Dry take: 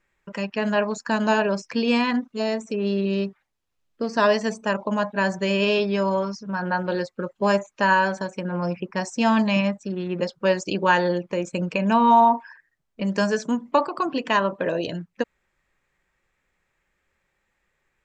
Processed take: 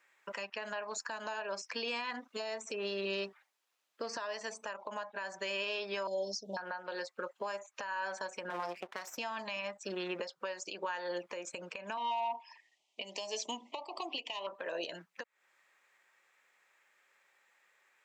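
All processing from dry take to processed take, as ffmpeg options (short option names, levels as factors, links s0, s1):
-filter_complex "[0:a]asettb=1/sr,asplit=3[s0][s1][s2];[s0]atrim=end=6.074[s3];[s1]atrim=start=6.07:end=6.57,asetpts=PTS-STARTPTS,afade=t=in:d=0.004:c=qsin,afade=t=out:st=0.496:d=0.004:c=qsin,agate=range=0.0224:threshold=0.0112:ratio=3:release=100:detection=peak,asuperstop=centerf=1600:order=12:qfactor=0.6[s4];[s2]atrim=start=6.566[s5];[s3][s4]acrossfade=d=0.004:c1=hsin:c2=qsin[s6];[s6][s5]acrossfade=d=0.004:c1=qsin:c2=hsin,asettb=1/sr,asplit=3[s7][s8][s9];[s7]atrim=end=8.504[s10];[s8]atrim=start=8.5:end=9.18,asetpts=PTS-STARTPTS,afade=t=in:d=0.004:c=qsin,afade=t=out:st=0.676:d=0.004:c=qsin,highpass=f=130:w=0.5412,highpass=f=130:w=1.3066,highshelf=f=6900:g=-7.5,aeval=exprs='max(val(0),0)':c=same[s11];[s9]atrim=start=9.176[s12];[s10][s11]acrossfade=d=0.004:c1=hsin:c2=qsin[s13];[s13][s12]acrossfade=d=0.004:c1=qsin:c2=hsin,asettb=1/sr,asplit=3[s14][s15][s16];[s14]atrim=end=11.974[s17];[s15]atrim=start=11.97:end=14.47,asetpts=PTS-STARTPTS,afade=t=in:d=0.004:c=qsin,afade=t=out:st=2.496:d=0.004:c=qsin,acontrast=90,asuperstop=centerf=1500:order=4:qfactor=1.3,highpass=310,equalizer=f=500:t=q:w=4:g=-9,equalizer=f=1100:t=q:w=4:g=-8,equalizer=f=1700:t=q:w=4:g=-4,equalizer=f=3000:t=q:w=4:g=7,lowpass=f=7600:w=0.5412,lowpass=f=7600:w=1.3066[s18];[s16]atrim=start=14.466[s19];[s17][s18]acrossfade=d=0.004:c1=hsin:c2=qsin[s20];[s20][s19]acrossfade=d=0.004:c1=qsin:c2=hsin,highpass=670,acompressor=threshold=0.02:ratio=12,alimiter=level_in=2.51:limit=0.0631:level=0:latency=1:release=326,volume=0.398,volume=1.68"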